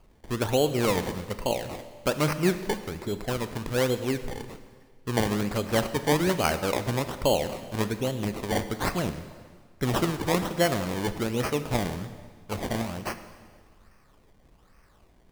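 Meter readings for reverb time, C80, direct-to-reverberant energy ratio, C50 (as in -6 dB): 1.7 s, 12.5 dB, 10.0 dB, 11.5 dB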